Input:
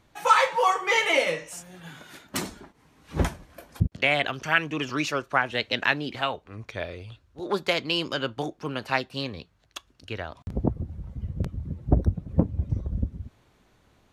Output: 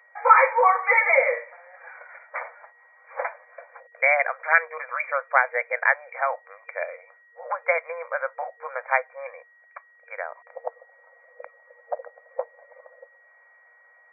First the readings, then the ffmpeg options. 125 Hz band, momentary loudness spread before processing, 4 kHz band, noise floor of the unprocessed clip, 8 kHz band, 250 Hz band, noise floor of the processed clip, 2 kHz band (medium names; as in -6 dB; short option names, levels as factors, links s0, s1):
under -40 dB, 21 LU, under -40 dB, -64 dBFS, under -40 dB, under -40 dB, -57 dBFS, +4.5 dB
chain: -af "aemphasis=mode=production:type=50fm,afftfilt=real='re*between(b*sr/4096,470,2400)':imag='im*between(b*sr/4096,470,2400)':win_size=4096:overlap=0.75,aeval=exprs='val(0)+0.00126*sin(2*PI*1900*n/s)':c=same,volume=1.58"